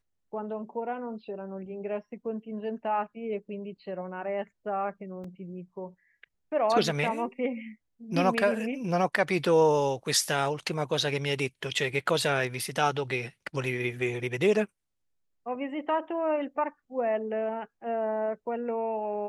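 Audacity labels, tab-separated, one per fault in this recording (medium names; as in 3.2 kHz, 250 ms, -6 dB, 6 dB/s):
5.240000	5.240000	dropout 3.7 ms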